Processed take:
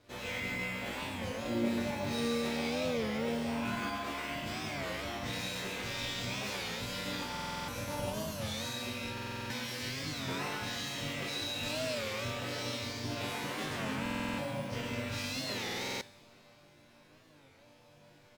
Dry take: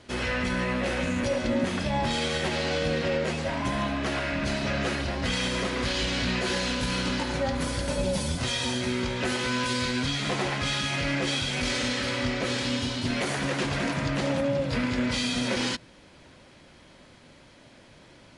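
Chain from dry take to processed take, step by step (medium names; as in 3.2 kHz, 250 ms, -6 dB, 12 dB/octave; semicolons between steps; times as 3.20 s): in parallel at -7 dB: sample-rate reducer 8.8 kHz, jitter 0%; on the sum: chord resonator G2 minor, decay 0.72 s; formant shift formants +3 st; on a send: delay 141 ms -5.5 dB; on the sum: plate-style reverb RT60 2.5 s, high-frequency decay 1×, DRR 16 dB; buffer glitch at 7.31/9.13/14.01/15.64 s, samples 2048, times 7; warped record 33 1/3 rpm, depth 160 cents; trim +5.5 dB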